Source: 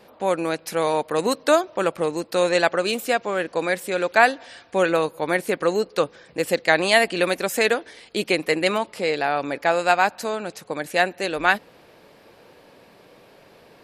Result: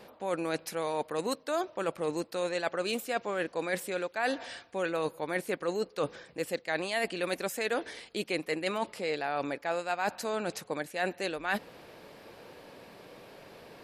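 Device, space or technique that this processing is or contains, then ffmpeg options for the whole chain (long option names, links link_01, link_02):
compression on the reversed sound: -af "areverse,acompressor=threshold=-29dB:ratio=6,areverse"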